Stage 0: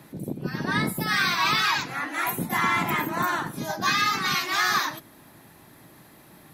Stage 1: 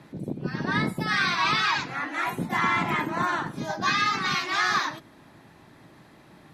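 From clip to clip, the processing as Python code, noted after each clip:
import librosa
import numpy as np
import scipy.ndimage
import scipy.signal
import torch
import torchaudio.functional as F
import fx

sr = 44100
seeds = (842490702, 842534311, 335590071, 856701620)

y = fx.air_absorb(x, sr, metres=80.0)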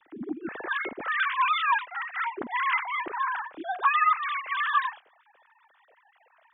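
y = fx.sine_speech(x, sr)
y = F.gain(torch.from_numpy(y), -1.5).numpy()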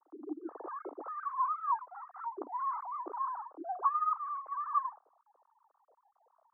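y = scipy.signal.sosfilt(scipy.signal.cheby1(4, 1.0, [290.0, 1200.0], 'bandpass', fs=sr, output='sos'), x)
y = F.gain(torch.from_numpy(y), -5.5).numpy()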